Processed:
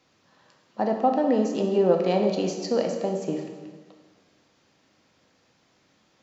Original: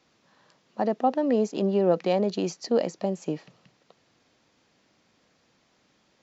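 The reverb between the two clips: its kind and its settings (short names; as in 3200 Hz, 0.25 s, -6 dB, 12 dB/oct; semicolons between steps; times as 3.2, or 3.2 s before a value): plate-style reverb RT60 1.5 s, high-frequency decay 0.8×, DRR 2.5 dB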